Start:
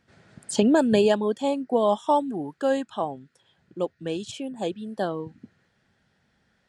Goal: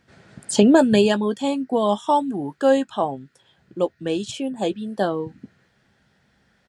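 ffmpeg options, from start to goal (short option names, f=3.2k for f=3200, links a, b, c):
-filter_complex "[0:a]asettb=1/sr,asplit=3[a][b][c];[a]atrim=end=0.844[d];[b]atrim=start=0.84:end=2.42,asetpts=PTS-STARTPTS,afade=t=in:d=0.004:c=qsin,afade=t=out:st=1.576:d=0.004:c=qsin,equalizer=f=560:t=o:w=1.4:g=-5[e];[c]atrim=start=2.416[f];[d][e]acrossfade=d=0.004:c1=hsin:c2=qsin[g];[g][f]acrossfade=d=0.004:c1=qsin:c2=hsin,asplit=2[h][i];[i]adelay=15,volume=-12dB[j];[h][j]amix=inputs=2:normalize=0,volume=5dB"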